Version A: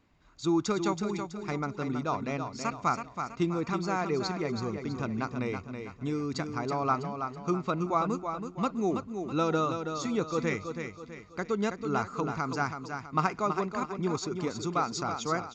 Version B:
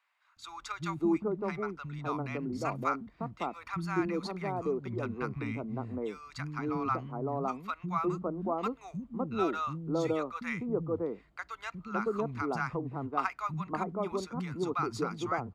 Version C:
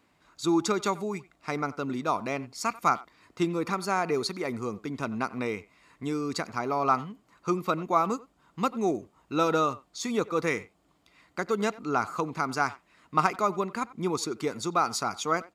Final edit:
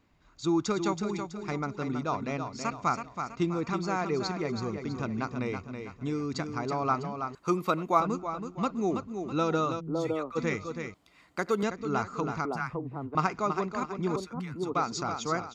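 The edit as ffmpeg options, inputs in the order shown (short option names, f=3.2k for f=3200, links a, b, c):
-filter_complex "[2:a]asplit=2[a][b];[1:a]asplit=3[c][d][e];[0:a]asplit=6[f][g][h][i][j][k];[f]atrim=end=7.352[l];[a]atrim=start=7.348:end=8.002[m];[g]atrim=start=7.998:end=9.81[n];[c]atrim=start=9.79:end=10.37[o];[h]atrim=start=10.35:end=10.942[p];[b]atrim=start=10.938:end=11.632[q];[i]atrim=start=11.628:end=12.452[r];[d]atrim=start=12.448:end=13.152[s];[j]atrim=start=13.148:end=14.162[t];[e]atrim=start=14.158:end=14.752[u];[k]atrim=start=14.748[v];[l][m]acrossfade=d=0.004:c1=hsin:c2=hsin[w];[w][n]acrossfade=d=0.004:c1=hsin:c2=hsin[x];[x][o]acrossfade=d=0.02:c1=tri:c2=tri[y];[y][p]acrossfade=d=0.02:c1=tri:c2=tri[z];[z][q]acrossfade=d=0.004:c1=hsin:c2=hsin[aa];[aa][r]acrossfade=d=0.004:c1=hsin:c2=hsin[ab];[ab][s]acrossfade=d=0.004:c1=hsin:c2=hsin[ac];[ac][t]acrossfade=d=0.004:c1=hsin:c2=hsin[ad];[ad][u]acrossfade=d=0.004:c1=hsin:c2=hsin[ae];[ae][v]acrossfade=d=0.004:c1=hsin:c2=hsin"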